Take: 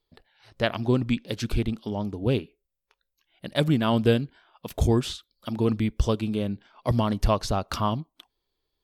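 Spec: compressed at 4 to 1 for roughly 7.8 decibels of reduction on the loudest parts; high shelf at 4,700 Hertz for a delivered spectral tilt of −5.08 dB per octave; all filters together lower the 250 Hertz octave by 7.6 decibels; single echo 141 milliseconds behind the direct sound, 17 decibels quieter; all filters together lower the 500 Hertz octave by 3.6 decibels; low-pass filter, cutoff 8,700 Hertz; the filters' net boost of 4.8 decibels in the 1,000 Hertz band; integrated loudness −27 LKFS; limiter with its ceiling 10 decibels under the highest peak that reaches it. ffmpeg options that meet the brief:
ffmpeg -i in.wav -af "lowpass=8700,equalizer=frequency=250:width_type=o:gain=-9,equalizer=frequency=500:width_type=o:gain=-4,equalizer=frequency=1000:width_type=o:gain=7,highshelf=frequency=4700:gain=6.5,acompressor=threshold=-26dB:ratio=4,alimiter=limit=-20dB:level=0:latency=1,aecho=1:1:141:0.141,volume=7dB" out.wav

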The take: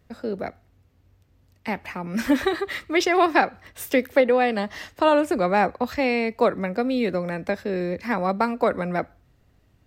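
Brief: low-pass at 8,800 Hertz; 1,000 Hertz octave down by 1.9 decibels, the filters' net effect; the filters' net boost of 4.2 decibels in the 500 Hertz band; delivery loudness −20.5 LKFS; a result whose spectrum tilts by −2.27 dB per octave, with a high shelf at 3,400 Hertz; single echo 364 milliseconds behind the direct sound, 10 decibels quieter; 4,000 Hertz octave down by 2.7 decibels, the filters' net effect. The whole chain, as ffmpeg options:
ffmpeg -i in.wav -af "lowpass=8800,equalizer=frequency=500:width_type=o:gain=6.5,equalizer=frequency=1000:width_type=o:gain=-6,highshelf=frequency=3400:gain=3.5,equalizer=frequency=4000:width_type=o:gain=-5.5,aecho=1:1:364:0.316,volume=0.5dB" out.wav

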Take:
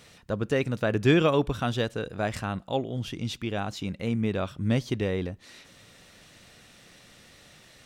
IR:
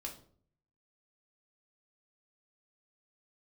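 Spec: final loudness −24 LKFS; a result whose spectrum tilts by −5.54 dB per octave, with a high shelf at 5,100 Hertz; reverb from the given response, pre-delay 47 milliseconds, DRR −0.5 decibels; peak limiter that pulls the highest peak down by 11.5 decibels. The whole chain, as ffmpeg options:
-filter_complex "[0:a]highshelf=frequency=5100:gain=4,alimiter=limit=-19.5dB:level=0:latency=1,asplit=2[link_01][link_02];[1:a]atrim=start_sample=2205,adelay=47[link_03];[link_02][link_03]afir=irnorm=-1:irlink=0,volume=2.5dB[link_04];[link_01][link_04]amix=inputs=2:normalize=0,volume=3.5dB"

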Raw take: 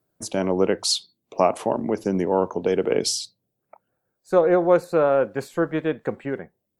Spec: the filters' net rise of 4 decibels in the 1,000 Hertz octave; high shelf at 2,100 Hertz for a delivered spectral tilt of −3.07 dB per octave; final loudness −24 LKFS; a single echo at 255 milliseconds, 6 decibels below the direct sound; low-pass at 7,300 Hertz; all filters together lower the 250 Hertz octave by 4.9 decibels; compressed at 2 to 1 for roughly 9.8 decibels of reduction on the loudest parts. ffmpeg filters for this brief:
ffmpeg -i in.wav -af "lowpass=7300,equalizer=frequency=250:width_type=o:gain=-8.5,equalizer=frequency=1000:width_type=o:gain=5,highshelf=frequency=2100:gain=4.5,acompressor=threshold=-29dB:ratio=2,aecho=1:1:255:0.501,volume=4.5dB" out.wav

